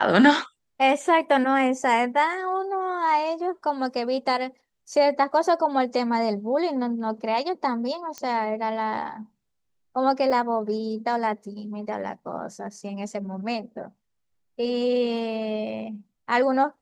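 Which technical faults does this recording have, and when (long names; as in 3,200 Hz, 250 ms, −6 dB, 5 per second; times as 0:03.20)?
0:08.18: click −18 dBFS
0:10.30: drop-out 4.2 ms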